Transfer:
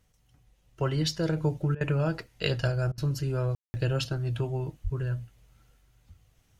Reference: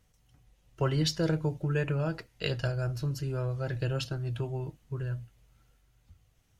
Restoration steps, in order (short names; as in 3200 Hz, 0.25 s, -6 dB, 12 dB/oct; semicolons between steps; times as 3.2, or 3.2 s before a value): 4.83–4.95 HPF 140 Hz 24 dB/oct; room tone fill 3.55–3.74; interpolate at 1.75/2.92, 57 ms; gain 0 dB, from 1.37 s -3.5 dB